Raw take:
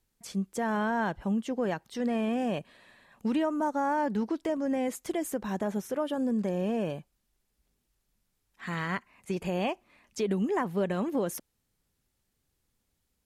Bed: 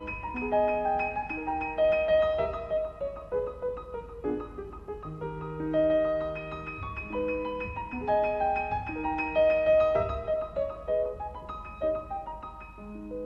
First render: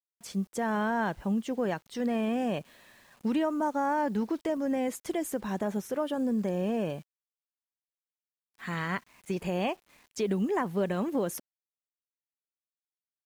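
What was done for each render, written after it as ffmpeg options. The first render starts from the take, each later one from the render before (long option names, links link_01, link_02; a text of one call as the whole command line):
ffmpeg -i in.wav -af "acrusher=bits=9:mix=0:aa=0.000001" out.wav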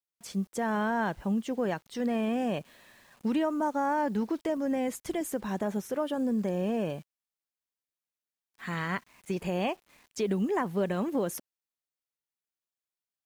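ffmpeg -i in.wav -filter_complex "[0:a]asettb=1/sr,asplit=3[link_01][link_02][link_03];[link_01]atrim=end=4.694[link_04];[link_02]atrim=start=4.69:end=5.21,asetpts=PTS-STARTPTS,afade=type=in:duration=0.004:curve=qsin,afade=type=out:start_time=0.516:duration=0.004:curve=qsin,asubboost=boost=11.5:cutoff=220[link_05];[link_03]atrim=start=5.206[link_06];[link_04][link_05]acrossfade=duration=0.004:curve1=hsin:curve2=qsin[link_07];[link_07][link_06]acrossfade=duration=0.004:curve1=qsin:curve2=hsin" out.wav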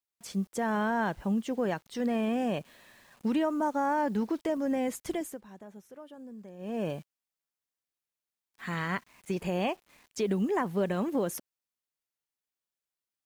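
ffmpeg -i in.wav -filter_complex "[0:a]asplit=3[link_01][link_02][link_03];[link_01]atrim=end=5.42,asetpts=PTS-STARTPTS,afade=type=out:start_time=5.13:duration=0.29:silence=0.141254[link_04];[link_02]atrim=start=5.42:end=6.58,asetpts=PTS-STARTPTS,volume=-17dB[link_05];[link_03]atrim=start=6.58,asetpts=PTS-STARTPTS,afade=type=in:duration=0.29:silence=0.141254[link_06];[link_04][link_05][link_06]concat=n=3:v=0:a=1" out.wav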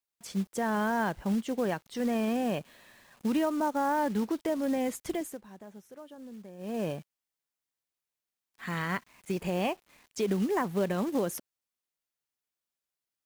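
ffmpeg -i in.wav -af "acrusher=bits=5:mode=log:mix=0:aa=0.000001" out.wav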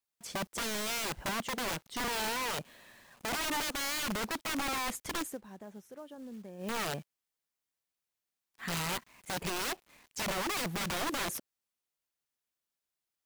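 ffmpeg -i in.wav -af "aeval=exprs='(mod(28.2*val(0)+1,2)-1)/28.2':channel_layout=same" out.wav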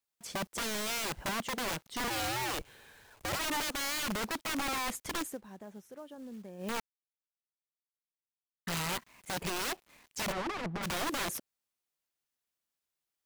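ffmpeg -i in.wav -filter_complex "[0:a]asplit=3[link_01][link_02][link_03];[link_01]afade=type=out:start_time=2.09:duration=0.02[link_04];[link_02]afreqshift=-130,afade=type=in:start_time=2.09:duration=0.02,afade=type=out:start_time=3.38:duration=0.02[link_05];[link_03]afade=type=in:start_time=3.38:duration=0.02[link_06];[link_04][link_05][link_06]amix=inputs=3:normalize=0,asplit=3[link_07][link_08][link_09];[link_07]afade=type=out:start_time=10.31:duration=0.02[link_10];[link_08]adynamicsmooth=sensitivity=4.5:basefreq=730,afade=type=in:start_time=10.31:duration=0.02,afade=type=out:start_time=10.82:duration=0.02[link_11];[link_09]afade=type=in:start_time=10.82:duration=0.02[link_12];[link_10][link_11][link_12]amix=inputs=3:normalize=0,asplit=3[link_13][link_14][link_15];[link_13]atrim=end=6.8,asetpts=PTS-STARTPTS,afade=type=out:start_time=6.796:duration=0.004:curve=hsin[link_16];[link_14]atrim=start=6.8:end=8.67,asetpts=PTS-STARTPTS,volume=0[link_17];[link_15]atrim=start=8.67,asetpts=PTS-STARTPTS,afade=type=in:duration=0.004:curve=hsin[link_18];[link_16][link_17][link_18]concat=n=3:v=0:a=1" out.wav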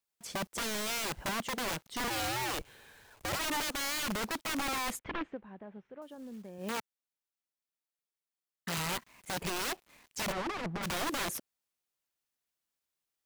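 ffmpeg -i in.wav -filter_complex "[0:a]asettb=1/sr,asplit=3[link_01][link_02][link_03];[link_01]atrim=end=4.994[link_04];[link_02]atrim=start=4.99:end=6.02,asetpts=PTS-STARTPTS,afade=type=in:duration=0.004:curve=qsin,afade=type=out:start_time=1.026:duration=0.004:curve=qsin,lowpass=frequency=2800:width=0.5412,lowpass=frequency=2800:width=1.3066[link_05];[link_03]atrim=start=6.016[link_06];[link_04][link_05]acrossfade=duration=0.004:curve1=hsin:curve2=qsin[link_07];[link_07][link_06]acrossfade=duration=0.004:curve1=qsin:curve2=hsin,asettb=1/sr,asplit=3[link_08][link_09][link_10];[link_08]atrim=end=6.584[link_11];[link_09]atrim=start=6.58:end=8.78,asetpts=PTS-STARTPTS,afade=type=in:duration=0.004:curve=qsin,afade=type=out:start_time=2.196:duration=0.004:curve=qsin,highpass=120[link_12];[link_10]atrim=start=8.776[link_13];[link_11][link_12]acrossfade=duration=0.004:curve1=hsin:curve2=qsin[link_14];[link_14][link_13]acrossfade=duration=0.004:curve1=qsin:curve2=hsin" out.wav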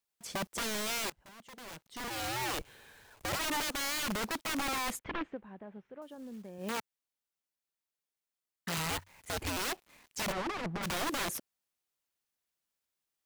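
ffmpeg -i in.wav -filter_complex "[0:a]asettb=1/sr,asplit=3[link_01][link_02][link_03];[link_01]atrim=end=8.904[link_04];[link_02]atrim=start=8.9:end=9.57,asetpts=PTS-STARTPTS,afade=type=in:duration=0.004:curve=qsin,afade=type=out:start_time=0.666:duration=0.004:curve=qsin,afreqshift=-93[link_05];[link_03]atrim=start=9.566[link_06];[link_04][link_05]acrossfade=duration=0.004:curve1=hsin:curve2=qsin[link_07];[link_07][link_06]acrossfade=duration=0.004:curve1=qsin:curve2=hsin,asplit=2[link_08][link_09];[link_08]atrim=end=1.1,asetpts=PTS-STARTPTS,afade=type=out:start_time=1.096:duration=0.004:curve=hsin:silence=0.0749894[link_10];[link_09]atrim=start=1.1,asetpts=PTS-STARTPTS,afade=type=in:duration=1.36:curve=qua:silence=0.0749894[link_11];[link_10][link_11]concat=n=2:v=0:a=1" out.wav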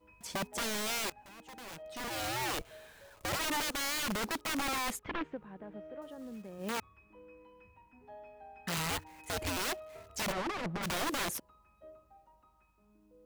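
ffmpeg -i in.wav -i bed.wav -filter_complex "[1:a]volume=-25dB[link_01];[0:a][link_01]amix=inputs=2:normalize=0" out.wav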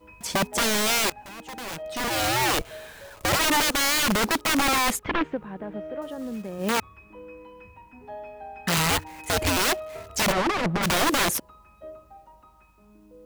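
ffmpeg -i in.wav -af "volume=12dB" out.wav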